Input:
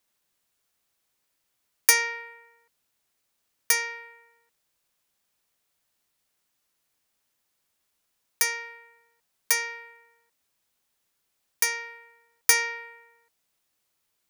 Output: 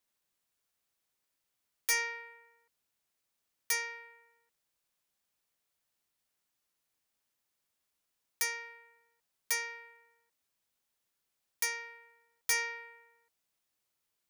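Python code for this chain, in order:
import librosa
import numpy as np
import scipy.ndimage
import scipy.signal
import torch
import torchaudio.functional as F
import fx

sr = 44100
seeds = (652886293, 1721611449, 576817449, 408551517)

y = np.clip(x, -10.0 ** (-17.5 / 20.0), 10.0 ** (-17.5 / 20.0))
y = y * 10.0 ** (-7.0 / 20.0)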